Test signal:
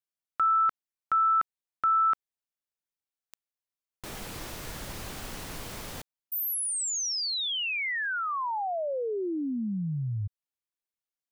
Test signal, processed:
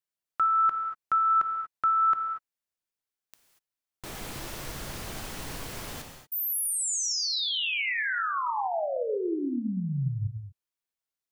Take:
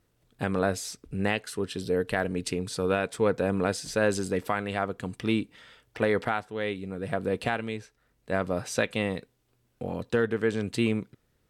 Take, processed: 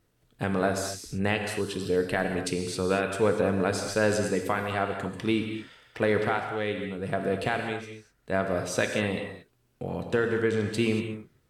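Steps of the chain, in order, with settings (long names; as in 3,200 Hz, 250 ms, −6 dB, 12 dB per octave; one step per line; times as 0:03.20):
reverb whose tail is shaped and stops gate 260 ms flat, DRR 4 dB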